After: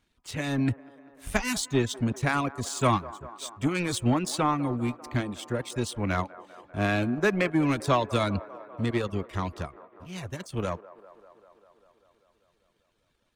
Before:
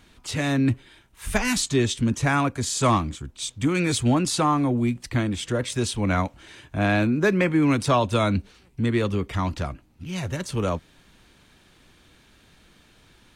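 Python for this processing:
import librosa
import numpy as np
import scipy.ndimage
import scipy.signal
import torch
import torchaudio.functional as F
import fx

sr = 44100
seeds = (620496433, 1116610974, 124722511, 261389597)

y = fx.power_curve(x, sr, exponent=1.4)
y = fx.dereverb_blind(y, sr, rt60_s=0.54)
y = fx.echo_wet_bandpass(y, sr, ms=197, feedback_pct=73, hz=740.0, wet_db=-16.0)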